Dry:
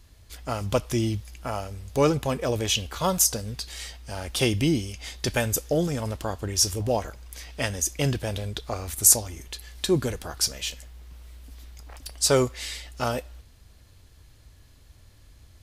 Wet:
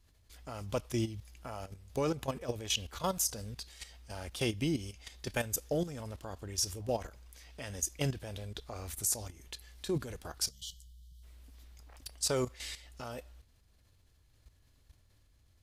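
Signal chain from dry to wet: level quantiser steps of 12 dB; spectral gain 10.5–11.23, 200–2900 Hz -28 dB; gain -6 dB

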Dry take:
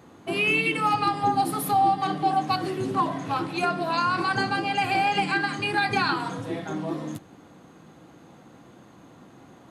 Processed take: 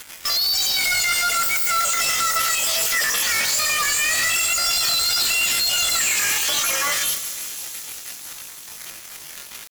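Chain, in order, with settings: random spectral dropouts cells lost 22%; HPF 1500 Hz 12 dB/oct; high shelf 2800 Hz +11.5 dB; in parallel at +2.5 dB: compressor 16:1, threshold -33 dBFS, peak gain reduction 17.5 dB; on the sum: limiter -19 dBFS, peak gain reduction 10.5 dB; flange 0.57 Hz, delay 7.9 ms, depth 5.9 ms, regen -24%; fuzz box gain 47 dB, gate -51 dBFS; bit-crush 6-bit; pitch shift +9.5 st; thin delay 0.167 s, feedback 82%, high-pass 5300 Hz, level -9 dB; on a send at -11 dB: reverb RT60 1.4 s, pre-delay 47 ms; on the sum: gain -6 dB

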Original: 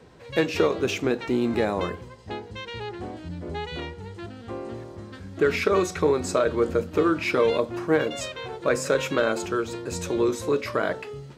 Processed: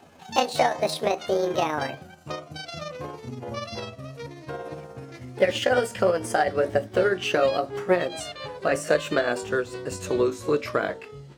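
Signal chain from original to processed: gliding pitch shift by +8.5 st ending unshifted; transient shaper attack +3 dB, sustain -2 dB

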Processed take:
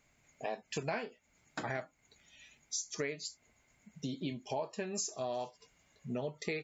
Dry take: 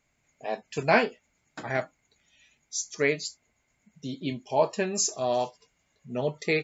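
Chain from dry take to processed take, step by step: compressor 6:1, threshold -38 dBFS, peak gain reduction 20.5 dB; gain +2.5 dB

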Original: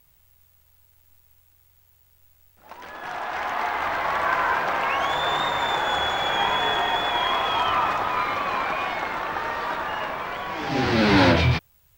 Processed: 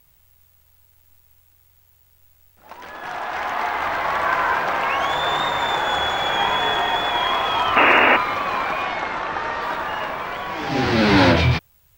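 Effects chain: 7.76–8.17 painted sound noise 230–2900 Hz -17 dBFS; 8.82–9.62 LPF 7800 Hz 24 dB/oct; gain +2.5 dB

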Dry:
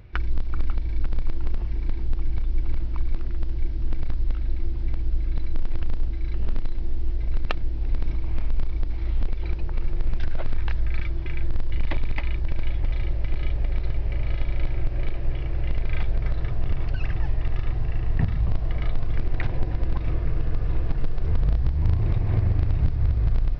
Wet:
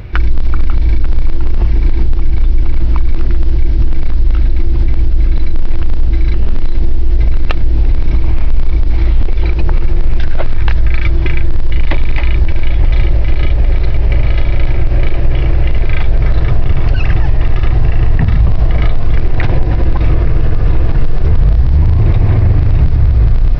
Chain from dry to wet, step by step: maximiser +20 dB; gain -1 dB

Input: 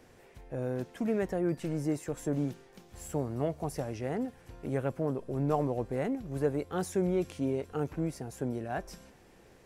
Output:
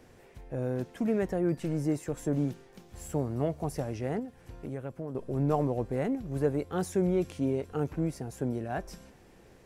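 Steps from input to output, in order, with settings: low shelf 350 Hz +3.5 dB; 4.19–5.15 compressor 2.5:1, threshold -38 dBFS, peak gain reduction 9.5 dB

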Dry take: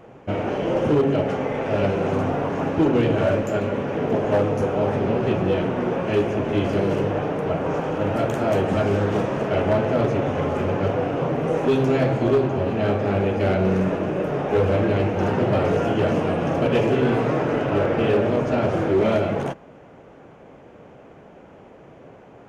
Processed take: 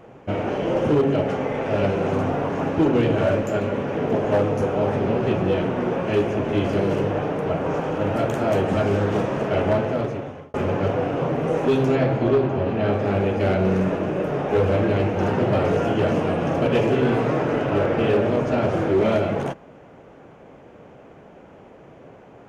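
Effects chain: 9.7–10.54 fade out; 11.95–12.93 Bessel low-pass 4300 Hz, order 2

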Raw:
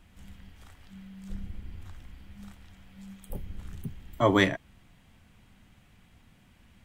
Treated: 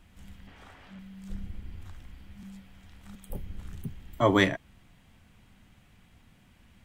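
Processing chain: 0.47–0.99 overdrive pedal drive 21 dB, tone 1100 Hz, clips at -37 dBFS; 2.43–3.15 reverse

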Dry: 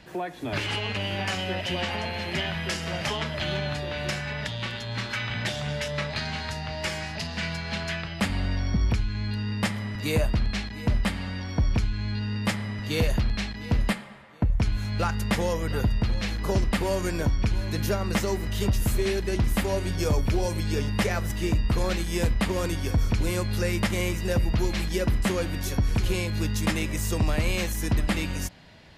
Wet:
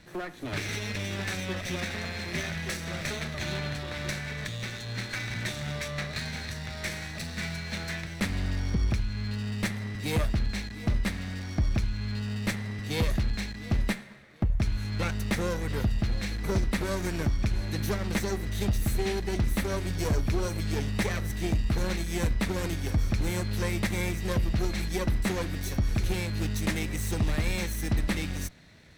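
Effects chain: minimum comb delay 0.51 ms; gain -2.5 dB

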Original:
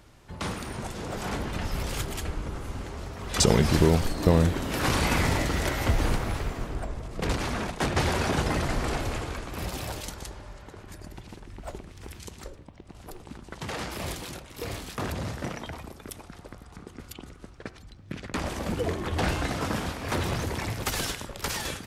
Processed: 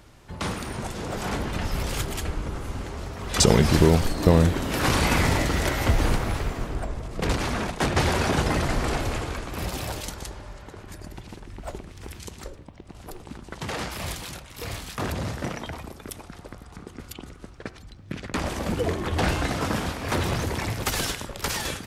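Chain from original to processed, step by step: 13.88–15 bell 360 Hz -6.5 dB 1.6 oct; gain +3 dB

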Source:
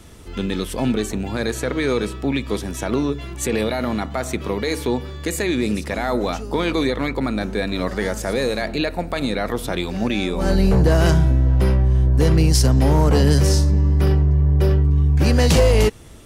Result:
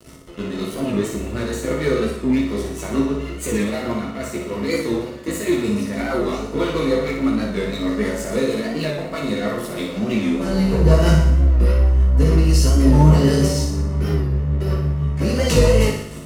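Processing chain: notch 3500 Hz, Q 11; reverse; upward compressor, threshold -20 dBFS; reverse; chorus voices 6, 0.44 Hz, delay 17 ms, depth 2.9 ms; rotary speaker horn 6.3 Hz; crossover distortion -36 dBFS; notch comb 800 Hz; flutter echo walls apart 10.1 m, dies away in 0.73 s; on a send at -3 dB: reverb RT60 0.30 s, pre-delay 7 ms; on the sum: record warp 45 rpm, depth 100 cents; gain +3.5 dB

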